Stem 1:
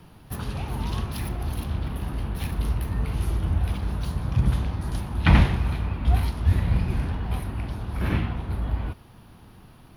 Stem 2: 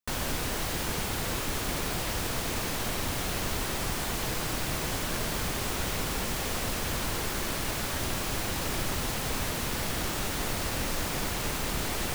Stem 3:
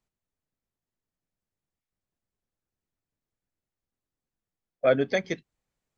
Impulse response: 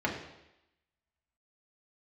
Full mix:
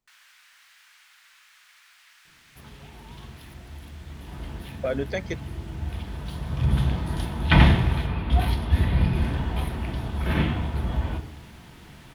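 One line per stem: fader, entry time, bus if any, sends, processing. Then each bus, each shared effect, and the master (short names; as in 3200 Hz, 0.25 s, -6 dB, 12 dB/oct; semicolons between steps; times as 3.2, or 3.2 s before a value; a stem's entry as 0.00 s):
4.06 s -17.5 dB -> 4.42 s -8.5 dB -> 6.15 s -8.5 dB -> 6.91 s -1.5 dB, 2.25 s, send -10 dB, bell 3400 Hz +9 dB 0.3 oct; auto duck -15 dB, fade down 0.25 s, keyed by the third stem
-11.5 dB, 0.00 s, muted 8.07–9.22, no send, inverse Chebyshev high-pass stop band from 270 Hz, stop band 80 dB; tilt -4.5 dB/oct
-0.5 dB, 0.00 s, no send, limiter -17.5 dBFS, peak gain reduction 8.5 dB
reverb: on, RT60 0.90 s, pre-delay 3 ms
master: dry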